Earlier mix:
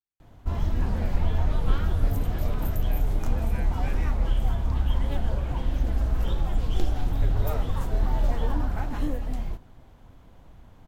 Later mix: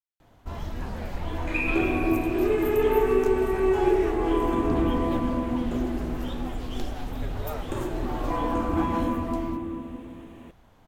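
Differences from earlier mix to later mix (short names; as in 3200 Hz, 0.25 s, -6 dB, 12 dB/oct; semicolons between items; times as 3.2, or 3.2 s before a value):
second sound: unmuted; reverb: on, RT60 2.8 s; master: add low shelf 200 Hz -10 dB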